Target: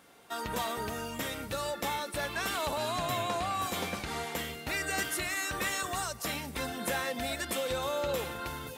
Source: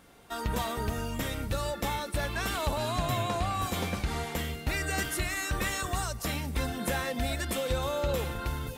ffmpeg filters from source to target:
ffmpeg -i in.wav -af "highpass=frequency=310:poles=1" out.wav

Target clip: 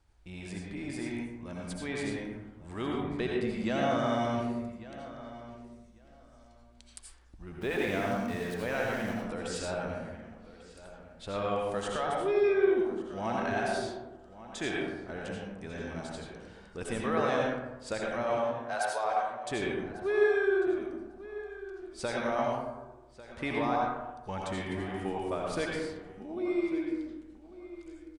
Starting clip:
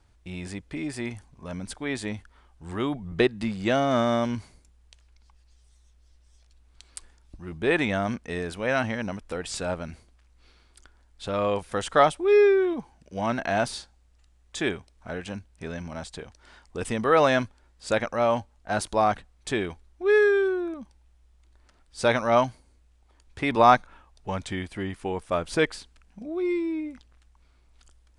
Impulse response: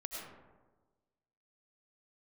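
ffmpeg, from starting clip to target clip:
-filter_complex "[0:a]asettb=1/sr,asplit=3[link_01][link_02][link_03];[link_01]atrim=end=18.374[link_04];[link_02]atrim=start=18.37:end=19.51,asetpts=PTS-STARTPTS,afade=type=in:duration=0.004:curve=qsin,afade=type=out:start_time=1.136:duration=0.004:curve=qsin,highpass=frequency=480:width=0.5412,highpass=frequency=480:width=1.3066[link_05];[link_03]atrim=start=19.506[link_06];[link_04][link_05]acrossfade=duration=0.004:curve1=hsin:curve2=qsin[link_07];[link_07][link_06]acrossfade=duration=0.004:curve1=qsin:curve2=hsin,alimiter=limit=-16dB:level=0:latency=1:release=233,asplit=2[link_08][link_09];[link_09]adelay=1146,lowpass=frequency=3800:poles=1,volume=-15.5dB,asplit=2[link_10][link_11];[link_11]adelay=1146,lowpass=frequency=3800:poles=1,volume=0.19[link_12];[link_08][link_10][link_12]amix=inputs=3:normalize=0,asettb=1/sr,asplit=3[link_13][link_14][link_15];[link_13]atrim=end=7.614[link_16];[link_14]atrim=start=7.61:end=9.14,asetpts=PTS-STARTPTS,afade=type=in:duration=0.004:curve=qsin,afade=type=out:start_time=1.526:duration=0.004:curve=qsin,aeval=exprs='val(0)*gte(abs(val(0)),0.0133)':channel_layout=same[link_17];[link_15]atrim=start=9.136[link_18];[link_16][link_17]acrossfade=duration=0.004:curve1=hsin:curve2=qsin[link_19];[link_19][link_18]acrossfade=duration=0.004:curve1=qsin:curve2=hsin[link_20];[1:a]atrim=start_sample=2205,asetrate=52920,aresample=44100[link_21];[link_20][link_21]afir=irnorm=-1:irlink=0,volume=-1.5dB"

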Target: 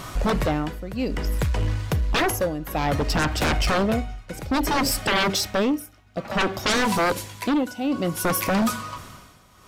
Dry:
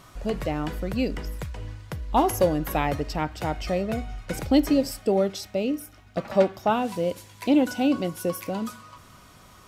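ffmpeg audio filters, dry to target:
ffmpeg -i in.wav -af "tremolo=f=0.58:d=0.88,aeval=exprs='0.282*sin(PI/2*7.08*val(0)/0.282)':channel_layout=same,volume=-6.5dB" out.wav

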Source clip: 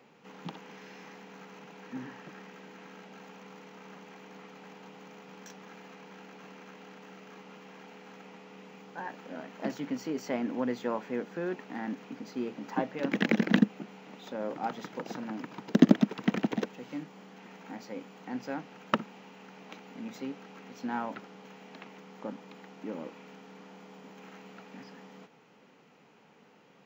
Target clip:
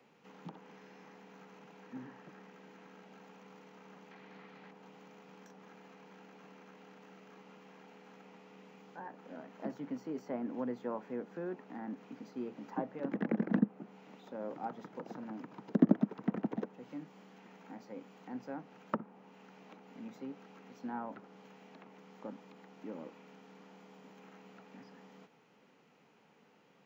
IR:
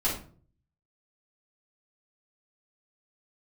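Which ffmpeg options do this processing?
-filter_complex "[0:a]asettb=1/sr,asplit=3[link_01][link_02][link_03];[link_01]atrim=end=4.114[link_04];[link_02]atrim=start=4.11:end=4.71,asetpts=PTS-STARTPTS,afade=type=in:duration=0.004:curve=qsin,afade=type=out:start_time=0.596:duration=0.004:curve=qsin,equalizer=frequency=125:width_type=o:width=1:gain=4,equalizer=frequency=2000:width_type=o:width=1:gain=8,equalizer=frequency=4000:width_type=o:width=1:gain=9[link_05];[link_03]atrim=start=4.706[link_06];[link_04][link_05]acrossfade=duration=0.004:curve1=hsin:curve2=qsin[link_07];[link_07][link_06]acrossfade=duration=0.004:curve1=qsin:curve2=hsin,acrossover=split=160|1500[link_08][link_09][link_10];[link_10]acompressor=threshold=-58dB:ratio=10[link_11];[link_08][link_09][link_11]amix=inputs=3:normalize=0,volume=-6dB"

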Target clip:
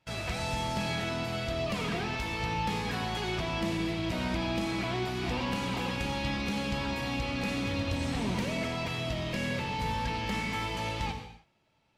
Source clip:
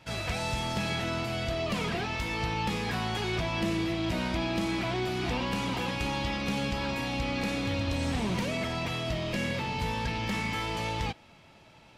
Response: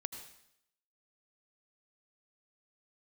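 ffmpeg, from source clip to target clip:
-filter_complex "[0:a]agate=range=-15dB:threshold=-47dB:ratio=16:detection=peak[link_01];[1:a]atrim=start_sample=2205,afade=type=out:start_time=0.38:duration=0.01,atrim=end_sample=17199[link_02];[link_01][link_02]afir=irnorm=-1:irlink=0"

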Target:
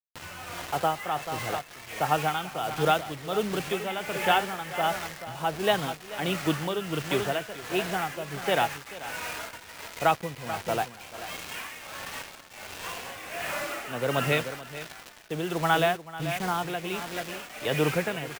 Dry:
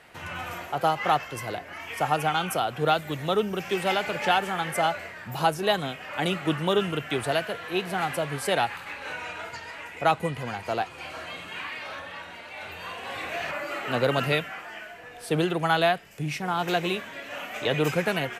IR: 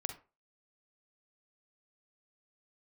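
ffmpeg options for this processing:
-af "aresample=8000,aresample=44100,acrusher=bits=5:mix=0:aa=0.000001,aecho=1:1:436:0.316,tremolo=f=1.4:d=0.6"

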